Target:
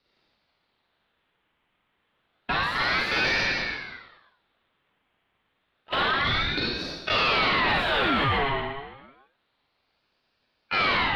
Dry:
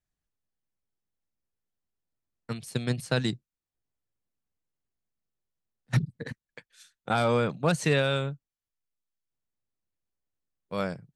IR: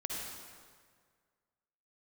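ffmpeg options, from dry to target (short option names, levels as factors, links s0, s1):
-filter_complex "[0:a]volume=21.1,asoftclip=hard,volume=0.0473[s0];[1:a]atrim=start_sample=2205,asetrate=70560,aresample=44100[s1];[s0][s1]afir=irnorm=-1:irlink=0,asplit=2[s2][s3];[s3]highpass=f=720:p=1,volume=89.1,asoftclip=type=tanh:threshold=0.224[s4];[s2][s4]amix=inputs=2:normalize=0,lowpass=f=1500:p=1,volume=0.501,highshelf=f=3900:t=q:w=3:g=-13.5,aeval=exprs='val(0)*sin(2*PI*1300*n/s+1300*0.6/0.29*sin(2*PI*0.29*n/s))':c=same"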